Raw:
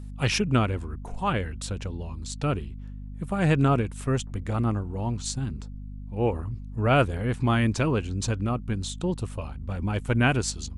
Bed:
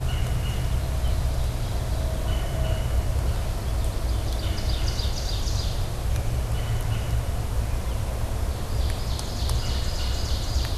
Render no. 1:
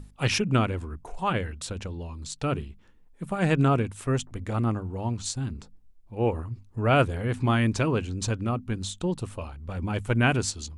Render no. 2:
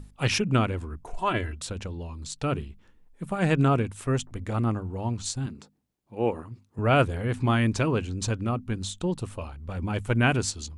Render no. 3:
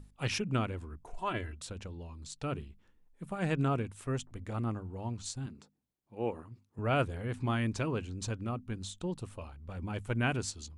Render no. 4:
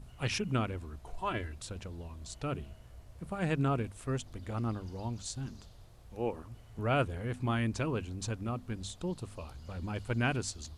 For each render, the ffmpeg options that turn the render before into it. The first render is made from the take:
-af "bandreject=f=50:t=h:w=6,bandreject=f=100:t=h:w=6,bandreject=f=150:t=h:w=6,bandreject=f=200:t=h:w=6,bandreject=f=250:t=h:w=6"
-filter_complex "[0:a]asettb=1/sr,asplit=3[a][b][c];[a]atrim=end=1.134[d];[b]atrim=start=1.13:end=1.56,asetpts=PTS-STARTPTS,afade=t=in:d=0.004:c=qsin,afade=t=out:st=0.426:d=0.004:c=qsin,aecho=1:1:3:0.65,atrim=end_sample=18963[e];[c]atrim=start=1.556[f];[d][e]acrossfade=d=0.004:c1=hsin:c2=qsin[g];[g][f]acrossfade=d=0.004:c1=qsin:c2=hsin,asettb=1/sr,asplit=3[h][i][j];[h]atrim=end=5.464[k];[i]atrim=start=5.46:end=6.79,asetpts=PTS-STARTPTS,afade=t=in:d=0.004:c=qsin,afade=t=out:st=1.326:d=0.004:c=qsin,highpass=160[l];[j]atrim=start=6.786[m];[k][l]acrossfade=d=0.004:c1=hsin:c2=qsin[n];[n][m]acrossfade=d=0.004:c1=qsin:c2=hsin"
-af "volume=-8.5dB"
-filter_complex "[1:a]volume=-28dB[a];[0:a][a]amix=inputs=2:normalize=0"

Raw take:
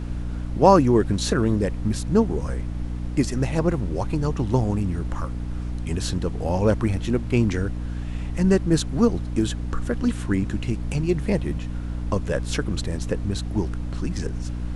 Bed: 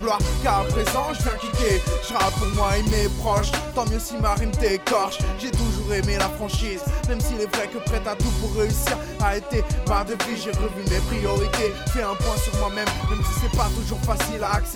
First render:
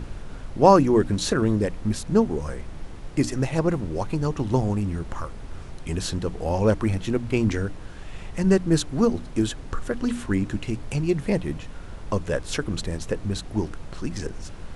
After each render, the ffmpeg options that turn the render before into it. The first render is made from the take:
-af "bandreject=f=60:t=h:w=6,bandreject=f=120:t=h:w=6,bandreject=f=180:t=h:w=6,bandreject=f=240:t=h:w=6,bandreject=f=300:t=h:w=6"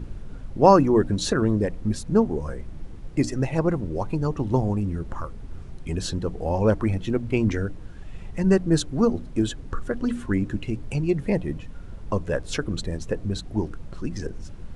-af "afftdn=nr=9:nf=-38"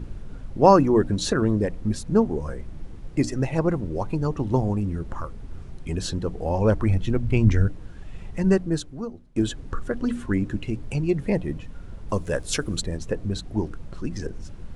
-filter_complex "[0:a]asettb=1/sr,asplit=3[a][b][c];[a]atrim=end=6.514[d];[b]atrim=start=6.51:end=7.68,asetpts=PTS-STARTPTS,afade=t=in:d=0.004:c=qsin,afade=t=out:st=1.166:d=0.004:c=qsin,asubboost=boost=9:cutoff=160[e];[c]atrim=start=7.676[f];[d][e]acrossfade=d=0.004:c1=hsin:c2=qsin[g];[g][f]acrossfade=d=0.004:c1=qsin:c2=hsin,asettb=1/sr,asplit=3[h][i][j];[h]atrim=end=12.094[k];[i]atrim=start=12.09:end=12.82,asetpts=PTS-STARTPTS,afade=t=in:d=0.004:c=qsin,afade=t=out:st=0.726:d=0.004:c=qsin,aemphasis=mode=production:type=50fm[l];[j]atrim=start=12.816[m];[k][l]acrossfade=d=0.004:c1=hsin:c2=qsin[n];[n][m]acrossfade=d=0.004:c1=qsin:c2=hsin,asplit=2[o][p];[o]atrim=end=9.36,asetpts=PTS-STARTPTS,afade=t=out:st=8.49:d=0.87:c=qua:silence=0.125893[q];[p]atrim=start=9.36,asetpts=PTS-STARTPTS,afade=t=in:d=0.004:c=hsin:silence=0.125893[r];[q][r]concat=n=2:v=0:a=1"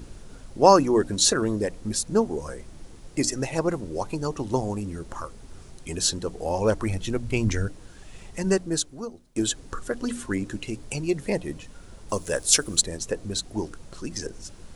-af "bass=f=250:g=-8,treble=f=4k:g=13"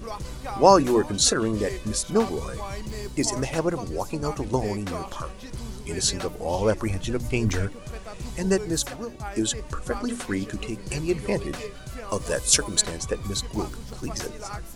-filter_complex "[1:a]volume=-13.5dB[a];[0:a][a]amix=inputs=2:normalize=0"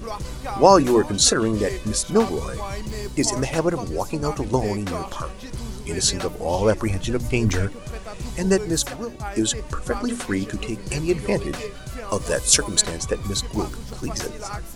-af "volume=3.5dB,alimiter=limit=-1dB:level=0:latency=1"

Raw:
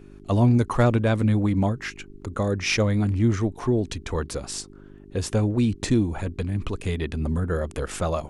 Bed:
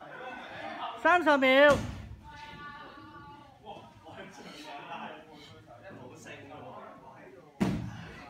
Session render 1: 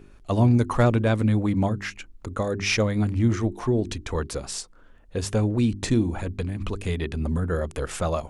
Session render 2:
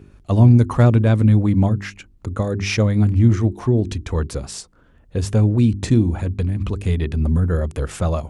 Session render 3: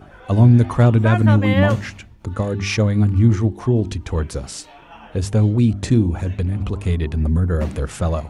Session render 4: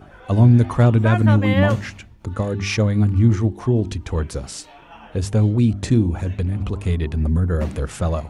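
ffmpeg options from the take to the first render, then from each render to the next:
-af "bandreject=f=50:t=h:w=4,bandreject=f=100:t=h:w=4,bandreject=f=150:t=h:w=4,bandreject=f=200:t=h:w=4,bandreject=f=250:t=h:w=4,bandreject=f=300:t=h:w=4,bandreject=f=350:t=h:w=4,bandreject=f=400:t=h:w=4"
-af "highpass=61,lowshelf=f=210:g=12"
-filter_complex "[1:a]volume=-0.5dB[a];[0:a][a]amix=inputs=2:normalize=0"
-af "volume=-1dB"

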